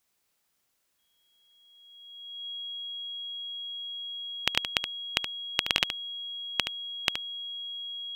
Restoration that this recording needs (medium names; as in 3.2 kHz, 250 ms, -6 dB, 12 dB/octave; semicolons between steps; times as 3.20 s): band-stop 3.3 kHz, Q 30; inverse comb 73 ms -9 dB